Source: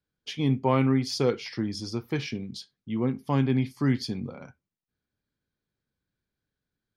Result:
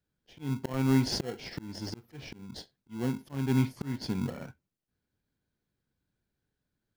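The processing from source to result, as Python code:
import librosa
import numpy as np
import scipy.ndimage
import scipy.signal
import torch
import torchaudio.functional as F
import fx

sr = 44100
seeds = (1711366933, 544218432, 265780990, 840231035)

p1 = fx.auto_swell(x, sr, attack_ms=411.0)
p2 = fx.sample_hold(p1, sr, seeds[0], rate_hz=1200.0, jitter_pct=0)
p3 = p1 + (p2 * 10.0 ** (-4.0 / 20.0))
y = p3 * 10.0 ** (-1.0 / 20.0)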